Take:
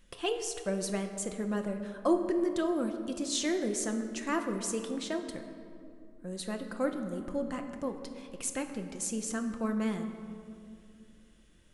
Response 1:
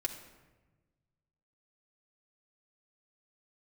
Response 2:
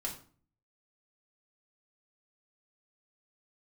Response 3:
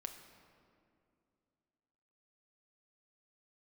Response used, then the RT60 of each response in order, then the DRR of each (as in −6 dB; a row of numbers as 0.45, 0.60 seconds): 3; 1.2, 0.45, 2.5 seconds; 0.0, −1.0, 5.0 decibels